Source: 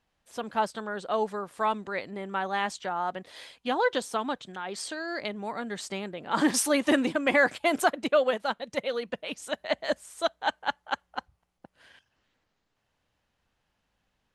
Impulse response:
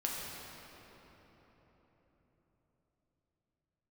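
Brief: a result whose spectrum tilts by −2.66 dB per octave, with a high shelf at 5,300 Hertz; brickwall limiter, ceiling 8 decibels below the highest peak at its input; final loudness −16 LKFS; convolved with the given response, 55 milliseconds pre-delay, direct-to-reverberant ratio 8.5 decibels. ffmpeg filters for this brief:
-filter_complex "[0:a]highshelf=frequency=5300:gain=5.5,alimiter=limit=-17.5dB:level=0:latency=1,asplit=2[link_01][link_02];[1:a]atrim=start_sample=2205,adelay=55[link_03];[link_02][link_03]afir=irnorm=-1:irlink=0,volume=-12.5dB[link_04];[link_01][link_04]amix=inputs=2:normalize=0,volume=14.5dB"

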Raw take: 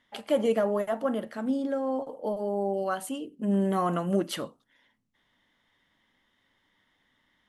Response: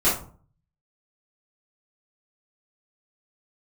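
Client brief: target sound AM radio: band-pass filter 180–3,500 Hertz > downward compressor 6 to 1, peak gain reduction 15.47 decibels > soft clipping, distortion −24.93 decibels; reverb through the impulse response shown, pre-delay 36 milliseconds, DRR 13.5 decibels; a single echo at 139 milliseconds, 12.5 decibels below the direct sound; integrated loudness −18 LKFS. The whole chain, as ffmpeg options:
-filter_complex "[0:a]aecho=1:1:139:0.237,asplit=2[link_01][link_02];[1:a]atrim=start_sample=2205,adelay=36[link_03];[link_02][link_03]afir=irnorm=-1:irlink=0,volume=-29dB[link_04];[link_01][link_04]amix=inputs=2:normalize=0,highpass=180,lowpass=3500,acompressor=threshold=-36dB:ratio=6,asoftclip=threshold=-28dB,volume=22.5dB"

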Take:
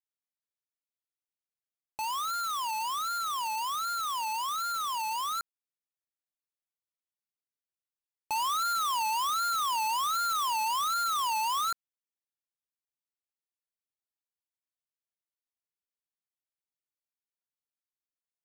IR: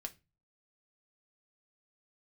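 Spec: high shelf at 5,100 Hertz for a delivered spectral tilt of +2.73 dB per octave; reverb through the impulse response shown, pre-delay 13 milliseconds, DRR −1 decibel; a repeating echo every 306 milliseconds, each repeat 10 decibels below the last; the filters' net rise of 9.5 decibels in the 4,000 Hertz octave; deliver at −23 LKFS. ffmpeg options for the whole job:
-filter_complex "[0:a]equalizer=frequency=4000:width_type=o:gain=8.5,highshelf=frequency=5100:gain=6.5,aecho=1:1:306|612|918|1224:0.316|0.101|0.0324|0.0104,asplit=2[link_01][link_02];[1:a]atrim=start_sample=2205,adelay=13[link_03];[link_02][link_03]afir=irnorm=-1:irlink=0,volume=4dB[link_04];[link_01][link_04]amix=inputs=2:normalize=0,volume=-1.5dB"

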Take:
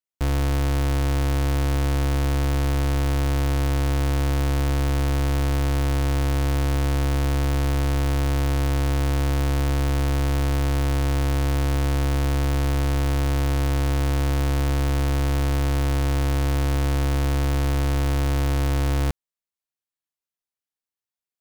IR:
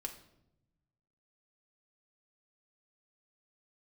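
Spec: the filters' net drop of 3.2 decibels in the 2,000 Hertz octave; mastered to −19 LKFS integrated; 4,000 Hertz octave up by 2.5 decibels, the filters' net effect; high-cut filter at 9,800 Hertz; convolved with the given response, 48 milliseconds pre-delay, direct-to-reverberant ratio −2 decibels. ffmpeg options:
-filter_complex "[0:a]lowpass=9800,equalizer=frequency=2000:width_type=o:gain=-5.5,equalizer=frequency=4000:width_type=o:gain=5,asplit=2[link_01][link_02];[1:a]atrim=start_sample=2205,adelay=48[link_03];[link_02][link_03]afir=irnorm=-1:irlink=0,volume=3.5dB[link_04];[link_01][link_04]amix=inputs=2:normalize=0,volume=4.5dB"

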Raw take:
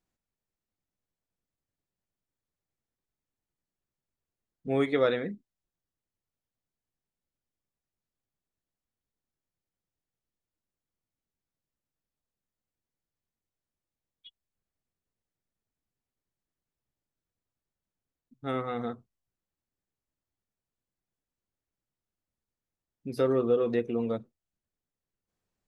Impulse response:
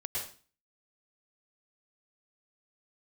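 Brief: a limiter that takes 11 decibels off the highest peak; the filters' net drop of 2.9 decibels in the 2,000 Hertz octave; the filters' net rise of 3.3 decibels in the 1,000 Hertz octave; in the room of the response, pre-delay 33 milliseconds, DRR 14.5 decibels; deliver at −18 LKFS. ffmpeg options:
-filter_complex "[0:a]equalizer=frequency=1000:width_type=o:gain=7,equalizer=frequency=2000:width_type=o:gain=-6,alimiter=limit=-22.5dB:level=0:latency=1,asplit=2[link_01][link_02];[1:a]atrim=start_sample=2205,adelay=33[link_03];[link_02][link_03]afir=irnorm=-1:irlink=0,volume=-17.5dB[link_04];[link_01][link_04]amix=inputs=2:normalize=0,volume=15.5dB"

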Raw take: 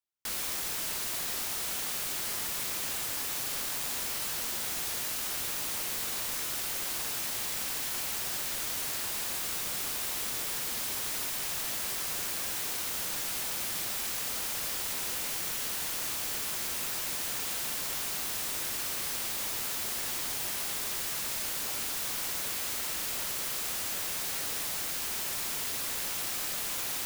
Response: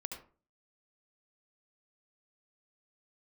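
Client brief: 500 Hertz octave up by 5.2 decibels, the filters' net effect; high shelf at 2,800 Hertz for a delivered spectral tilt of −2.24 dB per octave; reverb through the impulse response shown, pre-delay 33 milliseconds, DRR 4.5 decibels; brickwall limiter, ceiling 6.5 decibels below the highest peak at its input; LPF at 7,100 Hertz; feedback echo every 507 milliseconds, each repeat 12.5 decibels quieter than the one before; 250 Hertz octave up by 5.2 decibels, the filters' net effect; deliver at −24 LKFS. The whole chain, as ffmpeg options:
-filter_complex "[0:a]lowpass=7100,equalizer=frequency=250:width_type=o:gain=5,equalizer=frequency=500:width_type=o:gain=5.5,highshelf=frequency=2800:gain=-6.5,alimiter=level_in=9dB:limit=-24dB:level=0:latency=1,volume=-9dB,aecho=1:1:507|1014|1521:0.237|0.0569|0.0137,asplit=2[link_01][link_02];[1:a]atrim=start_sample=2205,adelay=33[link_03];[link_02][link_03]afir=irnorm=-1:irlink=0,volume=-3dB[link_04];[link_01][link_04]amix=inputs=2:normalize=0,volume=16dB"

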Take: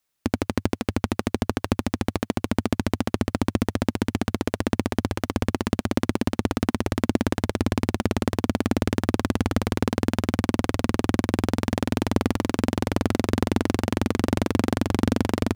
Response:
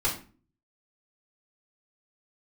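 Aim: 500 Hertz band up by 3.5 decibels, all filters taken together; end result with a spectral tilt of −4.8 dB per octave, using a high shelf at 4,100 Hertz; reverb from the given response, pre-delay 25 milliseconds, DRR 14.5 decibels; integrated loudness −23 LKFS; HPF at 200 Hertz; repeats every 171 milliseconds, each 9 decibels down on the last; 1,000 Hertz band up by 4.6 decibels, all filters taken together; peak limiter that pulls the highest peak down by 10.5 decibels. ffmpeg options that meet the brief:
-filter_complex "[0:a]highpass=200,equalizer=frequency=500:width_type=o:gain=3.5,equalizer=frequency=1000:width_type=o:gain=4.5,highshelf=frequency=4100:gain=4,alimiter=limit=-13.5dB:level=0:latency=1,aecho=1:1:171|342|513|684:0.355|0.124|0.0435|0.0152,asplit=2[link_01][link_02];[1:a]atrim=start_sample=2205,adelay=25[link_03];[link_02][link_03]afir=irnorm=-1:irlink=0,volume=-24dB[link_04];[link_01][link_04]amix=inputs=2:normalize=0,volume=10dB"

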